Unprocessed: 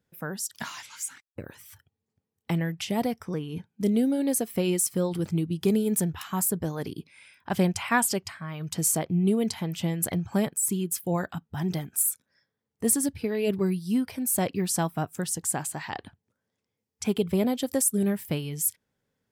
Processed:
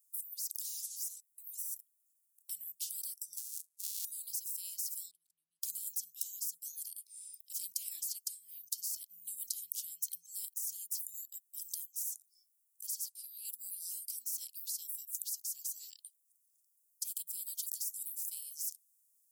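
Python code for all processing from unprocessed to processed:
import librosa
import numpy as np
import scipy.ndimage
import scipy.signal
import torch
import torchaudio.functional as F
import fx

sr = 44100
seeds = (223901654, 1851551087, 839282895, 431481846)

y = fx.chain(x, sr, fx.sample_sort(block=64),
    fx.ring_mod(carrier_hz=140.0),
    fx.resample_linear(factor=2), at=(3.37, 4.05))
y = fx.chain(y, sr, fx.level_steps(step_db=22),
    fx.air_absorb(metres=490.0), at=(5.11, 5.63))
y = fx.chain(y, sr, fx.steep_highpass(hz=2600.0, slope=48),
    fx.high_shelf(hz=12000.0, db=-11.5), at=(12.87, 13.45))
y = scipy.signal.sosfilt(scipy.signal.cheby2(4, 80, 1600.0, 'highpass', fs=sr, output='sos'), y)
y = fx.spectral_comp(y, sr, ratio=10.0)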